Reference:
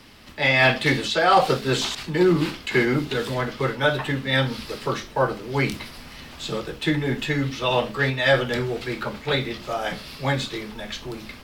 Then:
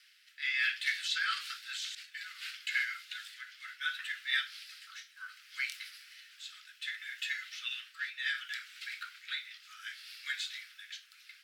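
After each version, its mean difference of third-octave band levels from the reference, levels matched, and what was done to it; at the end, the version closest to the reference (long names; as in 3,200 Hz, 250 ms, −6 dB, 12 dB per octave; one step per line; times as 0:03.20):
19.5 dB: Butterworth high-pass 1,400 Hz 72 dB per octave
rotating-speaker cabinet horn 0.65 Hz
level −7 dB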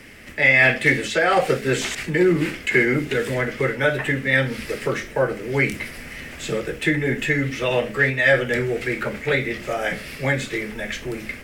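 3.0 dB: graphic EQ with 10 bands 500 Hz +5 dB, 1,000 Hz −10 dB, 2,000 Hz +12 dB, 4,000 Hz −11 dB, 8,000 Hz +5 dB
in parallel at +1.5 dB: downward compressor, threshold −25 dBFS, peak gain reduction 14.5 dB
on the sum: level −3.5 dB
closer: second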